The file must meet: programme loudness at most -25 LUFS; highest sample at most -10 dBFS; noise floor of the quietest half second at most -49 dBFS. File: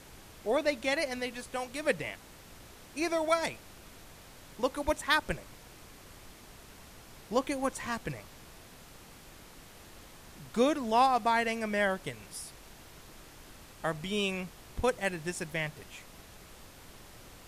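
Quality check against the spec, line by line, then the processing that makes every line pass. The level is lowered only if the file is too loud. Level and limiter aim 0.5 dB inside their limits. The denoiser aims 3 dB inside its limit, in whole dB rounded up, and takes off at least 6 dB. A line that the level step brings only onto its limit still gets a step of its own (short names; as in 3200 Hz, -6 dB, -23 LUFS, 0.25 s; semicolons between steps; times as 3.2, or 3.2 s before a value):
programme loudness -32.0 LUFS: OK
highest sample -12.0 dBFS: OK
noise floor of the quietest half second -52 dBFS: OK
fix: none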